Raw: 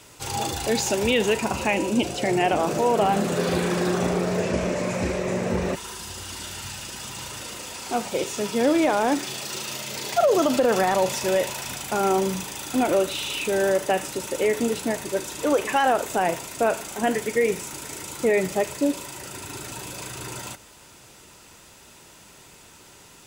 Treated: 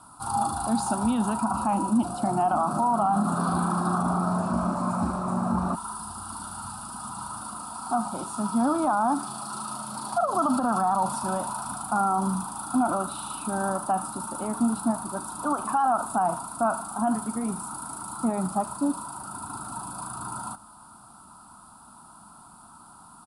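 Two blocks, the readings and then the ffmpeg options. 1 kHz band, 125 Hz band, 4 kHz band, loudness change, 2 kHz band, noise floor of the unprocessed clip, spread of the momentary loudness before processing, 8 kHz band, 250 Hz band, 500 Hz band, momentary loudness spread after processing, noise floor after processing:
+1.5 dB, -0.5 dB, -14.5 dB, -3.0 dB, -11.0 dB, -50 dBFS, 13 LU, -3.5 dB, 0.0 dB, -10.5 dB, 11 LU, -50 dBFS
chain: -af "firequalizer=gain_entry='entry(130,0);entry(220,10);entry(460,-18);entry(710,8);entry(1300,14);entry(1900,-23);entry(4400,-4);entry(6300,-15);entry(9800,12);entry(14000,-26)':delay=0.05:min_phase=1,alimiter=limit=-11dB:level=0:latency=1:release=49,volume=-4.5dB"

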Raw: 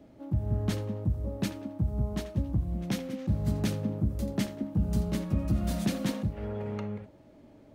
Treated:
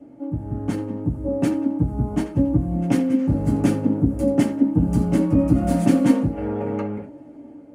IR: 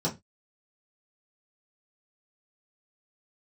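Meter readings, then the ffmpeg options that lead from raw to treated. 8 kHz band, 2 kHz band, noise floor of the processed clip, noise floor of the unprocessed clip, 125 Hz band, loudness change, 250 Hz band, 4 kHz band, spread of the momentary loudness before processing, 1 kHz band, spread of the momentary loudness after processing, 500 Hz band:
+4.5 dB, +6.5 dB, -44 dBFS, -55 dBFS, +6.5 dB, +10.5 dB, +13.5 dB, n/a, 6 LU, +12.0 dB, 9 LU, +11.5 dB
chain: -filter_complex "[0:a]dynaudnorm=f=470:g=5:m=6dB[a];[1:a]atrim=start_sample=2205,asetrate=79380,aresample=44100[b];[a][b]afir=irnorm=-1:irlink=0,volume=-2.5dB"

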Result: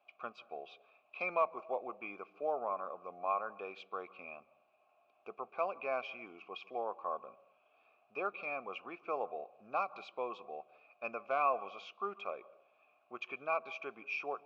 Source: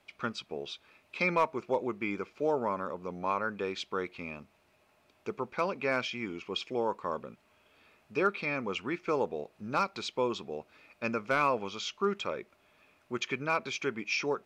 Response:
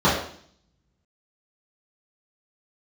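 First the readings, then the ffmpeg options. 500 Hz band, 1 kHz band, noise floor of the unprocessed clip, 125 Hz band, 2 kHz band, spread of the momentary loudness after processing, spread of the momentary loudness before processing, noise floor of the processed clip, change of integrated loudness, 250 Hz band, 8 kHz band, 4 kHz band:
-7.0 dB, -4.0 dB, -68 dBFS, under -20 dB, -8.5 dB, 14 LU, 11 LU, -73 dBFS, -6.5 dB, -16.5 dB, under -25 dB, -15.5 dB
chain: -filter_complex "[0:a]asplit=3[a][b][c];[a]bandpass=f=730:t=q:w=8,volume=0dB[d];[b]bandpass=f=1.09k:t=q:w=8,volume=-6dB[e];[c]bandpass=f=2.44k:t=q:w=8,volume=-9dB[f];[d][e][f]amix=inputs=3:normalize=0,highshelf=f=5.1k:g=-6,asplit=2[g][h];[1:a]atrim=start_sample=2205,adelay=135[i];[h][i]afir=irnorm=-1:irlink=0,volume=-43dB[j];[g][j]amix=inputs=2:normalize=0,volume=5dB"

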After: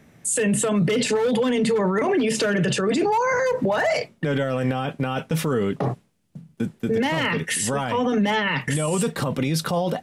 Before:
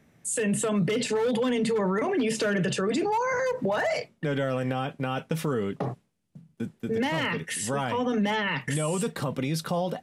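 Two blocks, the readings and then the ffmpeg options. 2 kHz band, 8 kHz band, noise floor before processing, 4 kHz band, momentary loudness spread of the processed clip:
+5.0 dB, +6.5 dB, -67 dBFS, +5.5 dB, 5 LU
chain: -af "alimiter=limit=-22.5dB:level=0:latency=1:release=21,volume=8dB"

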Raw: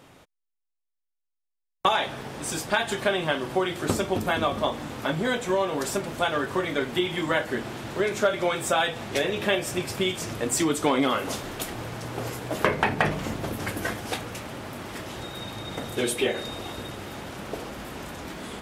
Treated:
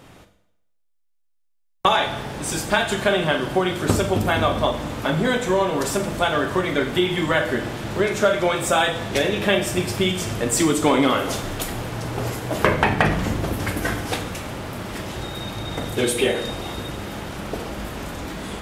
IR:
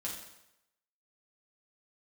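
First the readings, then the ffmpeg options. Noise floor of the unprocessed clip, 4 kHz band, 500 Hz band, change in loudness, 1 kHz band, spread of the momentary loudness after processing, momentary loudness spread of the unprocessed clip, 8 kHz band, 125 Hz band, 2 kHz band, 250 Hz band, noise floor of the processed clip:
-81 dBFS, +4.5 dB, +5.0 dB, +5.0 dB, +4.5 dB, 12 LU, 12 LU, +4.5 dB, +8.0 dB, +4.5 dB, +6.0 dB, -65 dBFS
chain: -filter_complex "[0:a]lowshelf=f=87:g=10,asplit=2[a][b];[1:a]atrim=start_sample=2205,adelay=39[c];[b][c]afir=irnorm=-1:irlink=0,volume=-8.5dB[d];[a][d]amix=inputs=2:normalize=0,volume=4dB"

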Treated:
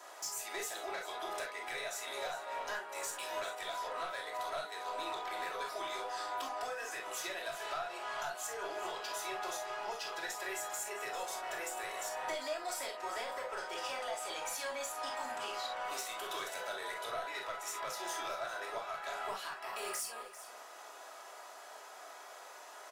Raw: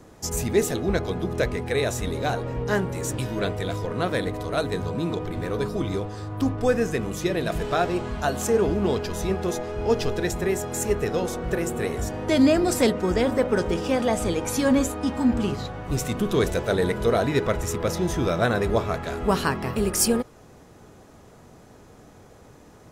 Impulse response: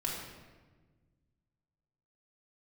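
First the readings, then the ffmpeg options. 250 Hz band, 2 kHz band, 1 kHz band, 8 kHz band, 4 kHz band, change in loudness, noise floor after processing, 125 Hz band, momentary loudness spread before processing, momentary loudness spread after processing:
-32.0 dB, -9.0 dB, -7.5 dB, -10.0 dB, -8.0 dB, -15.0 dB, -52 dBFS, under -40 dB, 7 LU, 11 LU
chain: -filter_complex "[0:a]highpass=f=660:w=0.5412,highpass=f=660:w=1.3066,acompressor=threshold=-40dB:ratio=16,asoftclip=type=tanh:threshold=-36.5dB,aecho=1:1:396:0.2[a];[1:a]atrim=start_sample=2205,atrim=end_sample=3087[b];[a][b]afir=irnorm=-1:irlink=0,volume=3.5dB"

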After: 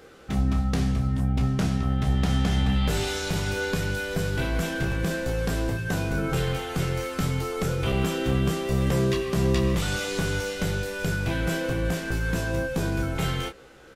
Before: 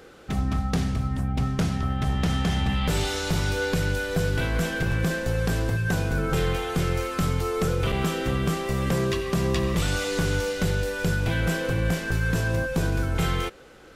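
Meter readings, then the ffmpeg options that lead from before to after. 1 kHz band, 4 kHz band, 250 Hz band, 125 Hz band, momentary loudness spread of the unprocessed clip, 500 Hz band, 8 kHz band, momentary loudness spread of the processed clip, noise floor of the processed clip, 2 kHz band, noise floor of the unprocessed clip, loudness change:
-2.0 dB, -1.0 dB, +0.5 dB, -0.5 dB, 2 LU, -1.0 dB, -0.5 dB, 4 LU, -48 dBFS, -1.5 dB, -47 dBFS, -0.5 dB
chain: -af "aecho=1:1:15|30:0.422|0.376,volume=-2dB"

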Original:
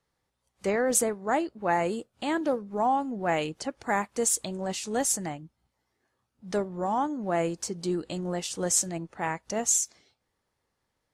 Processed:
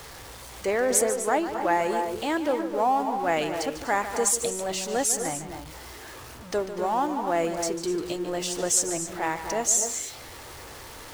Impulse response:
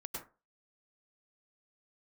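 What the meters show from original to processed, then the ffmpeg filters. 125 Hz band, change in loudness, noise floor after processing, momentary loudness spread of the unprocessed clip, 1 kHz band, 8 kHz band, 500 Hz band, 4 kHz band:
-3.5 dB, +2.5 dB, -43 dBFS, 9 LU, +3.0 dB, +3.0 dB, +3.0 dB, +4.0 dB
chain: -filter_complex "[0:a]aeval=exprs='val(0)+0.5*0.0126*sgn(val(0))':c=same,equalizer=f=190:t=o:w=0.62:g=-10.5,asplit=2[a][b];[1:a]atrim=start_sample=2205,adelay=147[c];[b][c]afir=irnorm=-1:irlink=0,volume=-6dB[d];[a][d]amix=inputs=2:normalize=0,volume=1.5dB"

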